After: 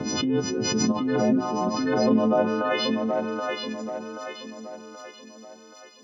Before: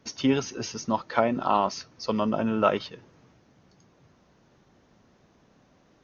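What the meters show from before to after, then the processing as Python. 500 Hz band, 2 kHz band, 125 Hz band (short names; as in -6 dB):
+4.0 dB, +5.0 dB, +3.5 dB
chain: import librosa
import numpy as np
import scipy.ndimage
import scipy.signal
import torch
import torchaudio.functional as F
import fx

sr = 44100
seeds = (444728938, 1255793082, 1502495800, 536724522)

y = fx.freq_snap(x, sr, grid_st=3)
y = fx.over_compress(y, sr, threshold_db=-25.0, ratio=-0.5)
y = fx.filter_sweep_bandpass(y, sr, from_hz=250.0, to_hz=5800.0, start_s=2.08, end_s=3.54, q=1.0)
y = fx.echo_tape(y, sr, ms=779, feedback_pct=49, wet_db=-3, lp_hz=6000.0, drive_db=18.0, wow_cents=21)
y = fx.pre_swell(y, sr, db_per_s=22.0)
y = y * 10.0 ** (6.0 / 20.0)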